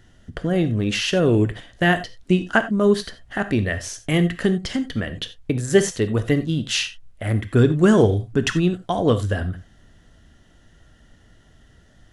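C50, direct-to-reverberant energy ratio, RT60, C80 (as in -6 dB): 13.0 dB, 10.0 dB, no single decay rate, 18.0 dB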